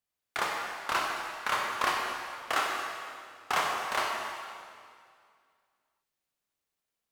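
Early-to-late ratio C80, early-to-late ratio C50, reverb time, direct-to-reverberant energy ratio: 2.0 dB, 0.5 dB, 2.2 s, −1.5 dB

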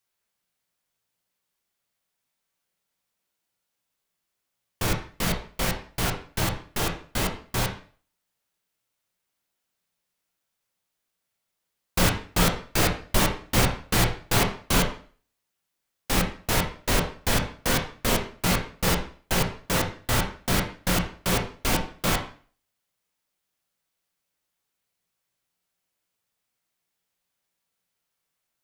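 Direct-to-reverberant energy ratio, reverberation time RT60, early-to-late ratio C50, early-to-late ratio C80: 1.5 dB, 0.45 s, 8.0 dB, 12.5 dB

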